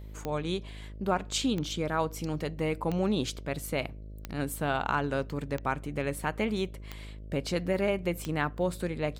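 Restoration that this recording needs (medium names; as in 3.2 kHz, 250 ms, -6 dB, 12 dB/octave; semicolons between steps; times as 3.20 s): de-click; de-hum 52.2 Hz, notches 12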